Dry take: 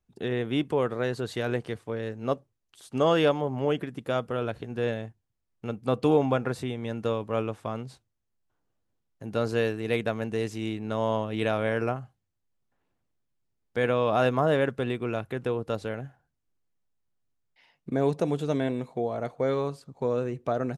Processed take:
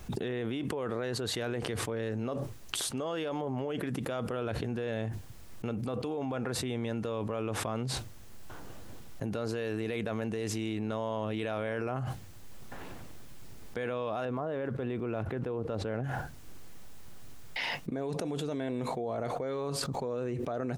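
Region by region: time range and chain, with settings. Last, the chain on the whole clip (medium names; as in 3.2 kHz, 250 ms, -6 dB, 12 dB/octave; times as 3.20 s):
14.25–16.04 s: block-companded coder 7-bit + low-pass 1.3 kHz 6 dB/octave
whole clip: dynamic bell 150 Hz, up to -4 dB, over -42 dBFS, Q 2.7; peak limiter -22.5 dBFS; level flattener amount 100%; trim -6 dB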